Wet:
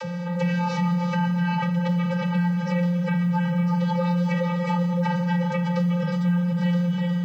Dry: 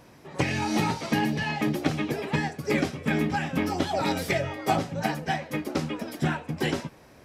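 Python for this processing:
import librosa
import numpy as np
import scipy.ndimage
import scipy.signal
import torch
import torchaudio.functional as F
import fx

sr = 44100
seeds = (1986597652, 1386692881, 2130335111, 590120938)

y = fx.rider(x, sr, range_db=4, speed_s=0.5)
y = fx.tilt_shelf(y, sr, db=-5.5, hz=660.0)
y = fx.vocoder(y, sr, bands=32, carrier='square', carrier_hz=175.0)
y = scipy.signal.sosfilt(scipy.signal.butter(2, 6100.0, 'lowpass', fs=sr, output='sos'), y)
y = fx.low_shelf(y, sr, hz=280.0, db=9.5)
y = fx.echo_feedback(y, sr, ms=361, feedback_pct=43, wet_db=-9.0)
y = fx.rev_schroeder(y, sr, rt60_s=3.3, comb_ms=25, drr_db=6.0)
y = fx.quant_float(y, sr, bits=6)
y = fx.env_flatten(y, sr, amount_pct=70)
y = y * 10.0 ** (-7.0 / 20.0)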